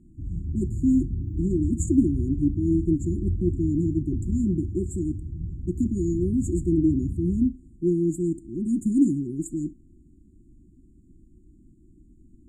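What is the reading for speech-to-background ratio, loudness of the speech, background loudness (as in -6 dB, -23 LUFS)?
6.0 dB, -26.0 LUFS, -32.0 LUFS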